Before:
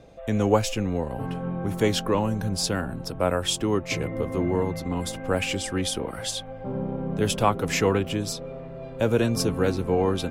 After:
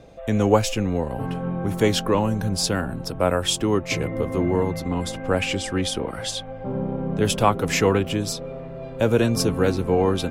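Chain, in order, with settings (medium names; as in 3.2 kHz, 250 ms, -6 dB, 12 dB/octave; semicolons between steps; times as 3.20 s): 4.90–7.25 s: treble shelf 11 kHz -11.5 dB; trim +3 dB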